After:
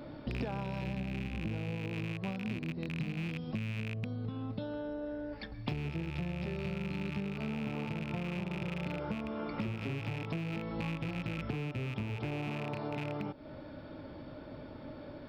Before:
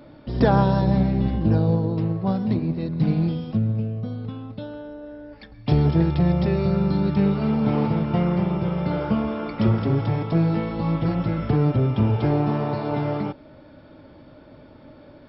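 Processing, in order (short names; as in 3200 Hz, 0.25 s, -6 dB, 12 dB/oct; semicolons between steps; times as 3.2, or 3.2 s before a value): rattling part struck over -24 dBFS, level -17 dBFS; compressor 12:1, threshold -34 dBFS, peak gain reduction 21.5 dB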